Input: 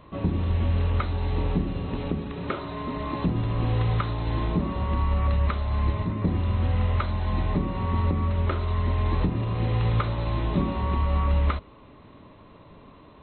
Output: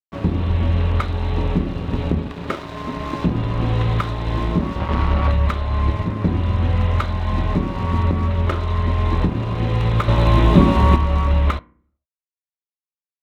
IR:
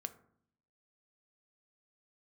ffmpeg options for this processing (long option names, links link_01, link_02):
-filter_complex "[0:a]asettb=1/sr,asplit=3[link_01][link_02][link_03];[link_01]atrim=end=1.884[link_04];[link_02]atrim=start=1.88:end=2.28,asetpts=PTS-STARTPTS,afade=type=in:duration=0.004:curve=qsin,afade=type=out:start_time=0.396:duration=0.004:curve=qsin,equalizer=frequency=75:width=0.9:gain=7[link_05];[link_03]atrim=start=2.276[link_06];[link_04][link_05]acrossfade=duration=0.004:curve1=hsin:curve2=qsin[link_07];[link_07][link_06]acrossfade=duration=0.004:curve1=qsin:curve2=hsin,asettb=1/sr,asplit=3[link_08][link_09][link_10];[link_08]atrim=end=4.794[link_11];[link_09]atrim=start=4.79:end=5.31,asetpts=PTS-STARTPTS,afade=type=in:duration=0.004:curve=qsin,afade=type=out:start_time=0.516:duration=0.004:curve=qsin,aeval=exprs='0.2*(cos(1*acos(clip(val(0)/0.2,-1,1)))-cos(1*PI/2))+0.0224*(cos(7*acos(clip(val(0)/0.2,-1,1)))-cos(7*PI/2))':channel_layout=same[link_12];[link_10]atrim=start=5.306[link_13];[link_11][link_12]acrossfade=duration=0.004:curve1=hsin:curve2=qsin[link_14];[link_14][link_13]acrossfade=duration=0.004:curve1=qsin:curve2=hsin,asettb=1/sr,asplit=3[link_15][link_16][link_17];[link_15]atrim=end=10.084[link_18];[link_16]atrim=start=10.08:end=10.96,asetpts=PTS-STARTPTS,afade=type=in:duration=0.004:curve=qsin,afade=type=out:start_time=0.876:duration=0.004:curve=qsin,acontrast=80[link_19];[link_17]atrim=start=10.956[link_20];[link_18][link_19]acrossfade=duration=0.004:curve1=hsin:curve2=qsin[link_21];[link_21][link_20]acrossfade=duration=0.004:curve1=qsin:curve2=hsin,aeval=exprs='sgn(val(0))*max(abs(val(0))-0.0126,0)':channel_layout=same,asplit=2[link_22][link_23];[1:a]atrim=start_sample=2205,asetrate=61740,aresample=44100[link_24];[link_23][link_24]afir=irnorm=-1:irlink=0,volume=2dB[link_25];[link_22][link_25]amix=inputs=2:normalize=0,volume=2.5dB"